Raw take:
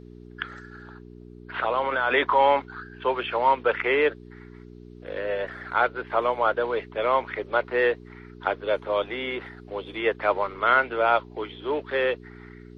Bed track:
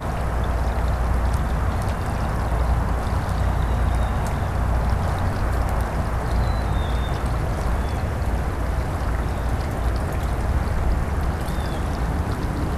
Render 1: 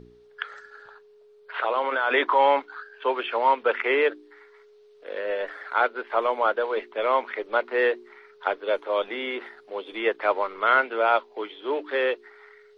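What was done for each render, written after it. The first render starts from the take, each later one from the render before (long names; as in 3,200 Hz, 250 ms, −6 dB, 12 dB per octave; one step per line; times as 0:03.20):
hum removal 60 Hz, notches 6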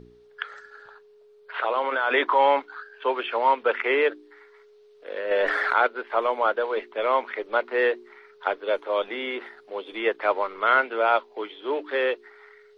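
0:05.31–0:05.87: envelope flattener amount 70%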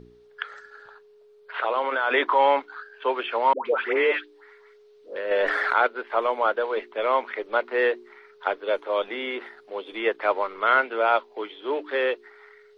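0:03.53–0:05.16: all-pass dispersion highs, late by 128 ms, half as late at 810 Hz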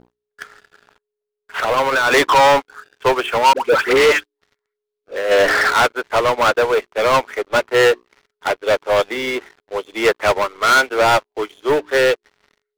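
leveller curve on the samples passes 5
expander for the loud parts 2.5 to 1, over −21 dBFS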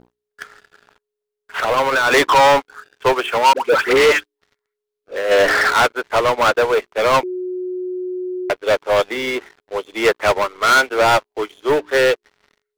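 0:03.13–0:03.77: low-shelf EQ 130 Hz −7 dB
0:07.23–0:08.50: beep over 365 Hz −22 dBFS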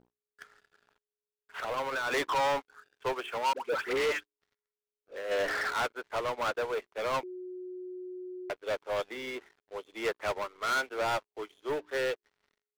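level −16.5 dB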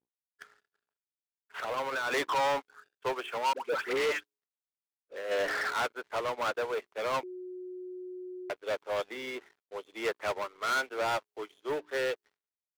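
downward expander −55 dBFS
low-shelf EQ 70 Hz −10.5 dB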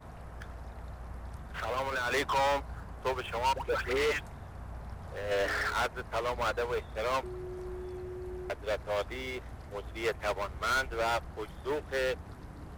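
mix in bed track −22 dB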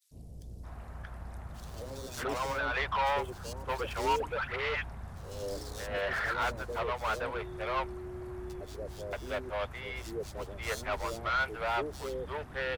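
three-band delay without the direct sound highs, lows, mids 110/630 ms, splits 480/4,300 Hz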